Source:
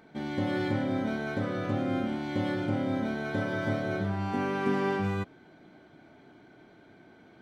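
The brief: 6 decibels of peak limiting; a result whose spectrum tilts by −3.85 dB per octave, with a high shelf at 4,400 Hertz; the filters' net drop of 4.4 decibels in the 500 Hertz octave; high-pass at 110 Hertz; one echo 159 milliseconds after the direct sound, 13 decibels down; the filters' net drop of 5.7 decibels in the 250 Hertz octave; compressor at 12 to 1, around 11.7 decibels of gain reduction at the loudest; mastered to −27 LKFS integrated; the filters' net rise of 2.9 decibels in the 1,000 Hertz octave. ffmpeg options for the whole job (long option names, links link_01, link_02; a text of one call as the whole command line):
ffmpeg -i in.wav -af "highpass=110,equalizer=frequency=250:width_type=o:gain=-5.5,equalizer=frequency=500:width_type=o:gain=-6,equalizer=frequency=1000:width_type=o:gain=6,highshelf=frequency=4400:gain=6.5,acompressor=threshold=-38dB:ratio=12,alimiter=level_in=10.5dB:limit=-24dB:level=0:latency=1,volume=-10.5dB,aecho=1:1:159:0.224,volume=16dB" out.wav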